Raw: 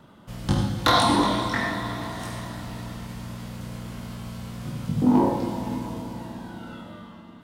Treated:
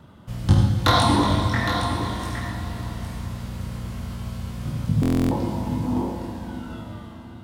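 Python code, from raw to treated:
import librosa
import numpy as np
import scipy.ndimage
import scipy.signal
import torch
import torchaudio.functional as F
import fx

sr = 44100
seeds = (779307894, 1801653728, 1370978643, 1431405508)

y = fx.peak_eq(x, sr, hz=82.0, db=13.0, octaves=1.2)
y = y + 10.0 ** (-8.5 / 20.0) * np.pad(y, (int(813 * sr / 1000.0), 0))[:len(y)]
y = fx.buffer_glitch(y, sr, at_s=(5.01,), block=1024, repeats=12)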